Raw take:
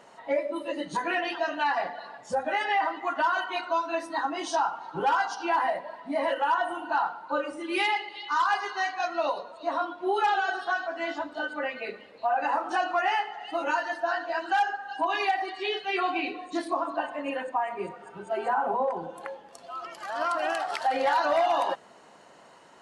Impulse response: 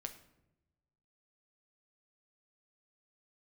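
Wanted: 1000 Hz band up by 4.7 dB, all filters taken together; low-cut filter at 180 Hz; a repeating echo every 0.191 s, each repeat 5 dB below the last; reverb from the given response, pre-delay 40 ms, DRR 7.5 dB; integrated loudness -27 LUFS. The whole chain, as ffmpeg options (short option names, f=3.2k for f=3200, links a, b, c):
-filter_complex "[0:a]highpass=180,equalizer=f=1k:t=o:g=6,aecho=1:1:191|382|573|764|955|1146|1337:0.562|0.315|0.176|0.0988|0.0553|0.031|0.0173,asplit=2[a][b];[1:a]atrim=start_sample=2205,adelay=40[c];[b][c]afir=irnorm=-1:irlink=0,volume=-4.5dB[d];[a][d]amix=inputs=2:normalize=0,volume=-4.5dB"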